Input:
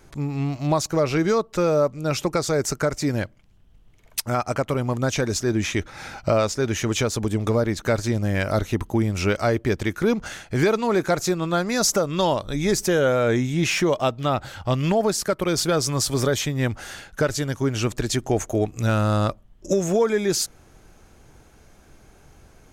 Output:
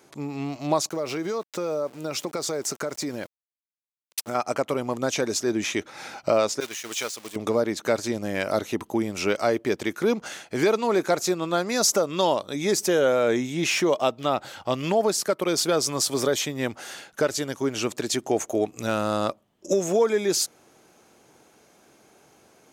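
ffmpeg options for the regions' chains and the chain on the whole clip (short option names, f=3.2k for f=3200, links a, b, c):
-filter_complex "[0:a]asettb=1/sr,asplit=3[a][b][c];[a]atrim=end=0.894[d];[b]atrim=start=0.89:end=4.35,asetpts=PTS-STARTPTS,afade=t=in:d=0.004:c=qsin,afade=t=out:st=3.456:d=0.004:c=qsin,bandreject=f=2.6k:w=26,aeval=exprs='val(0)*gte(abs(val(0)),0.01)':c=same,acompressor=threshold=-22dB:ratio=10:attack=3.2:release=140:knee=1:detection=peak[e];[c]atrim=start=4.346[f];[d][e]acrossfade=d=0.004:c1=hsin:c2=qsin[g];[g][f]acrossfade=d=0.004:c1=qsin:c2=hsin,asettb=1/sr,asplit=3[h][i][j];[h]atrim=end=6.604[k];[i]atrim=start=6.6:end=7.36,asetpts=PTS-STARTPTS,afade=t=in:d=0.004:c=qsin,afade=t=out:st=0.756:d=0.004:c=qsin,aeval=exprs='val(0)+0.5*0.0501*sgn(val(0))':c=same,agate=range=-33dB:threshold=-14dB:ratio=3:release=100:detection=peak,tiltshelf=f=840:g=-9[l];[j]atrim=start=7.356[m];[k][l]acrossfade=d=0.004:c1=hsin:c2=qsin[n];[n][m]acrossfade=d=0.004:c1=qsin:c2=hsin,highpass=260,equalizer=f=1.6k:t=o:w=0.77:g=-3.5"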